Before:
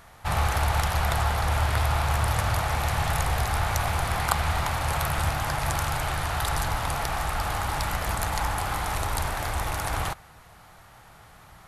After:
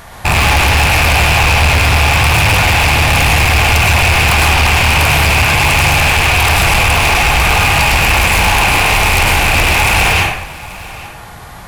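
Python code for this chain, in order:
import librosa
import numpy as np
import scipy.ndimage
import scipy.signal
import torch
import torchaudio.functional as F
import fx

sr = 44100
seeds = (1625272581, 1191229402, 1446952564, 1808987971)

p1 = fx.rattle_buzz(x, sr, strikes_db=-33.0, level_db=-10.0)
p2 = fx.rev_plate(p1, sr, seeds[0], rt60_s=0.74, hf_ratio=0.75, predelay_ms=90, drr_db=-1.0)
p3 = fx.rider(p2, sr, range_db=10, speed_s=0.5)
p4 = p2 + F.gain(torch.from_numpy(p3), 2.0).numpy()
p5 = fx.notch(p4, sr, hz=1300.0, q=9.8)
p6 = np.clip(p5, -10.0 ** (-14.0 / 20.0), 10.0 ** (-14.0 / 20.0))
p7 = p6 + fx.echo_single(p6, sr, ms=833, db=-19.5, dry=0)
y = F.gain(torch.from_numpy(p7), 6.5).numpy()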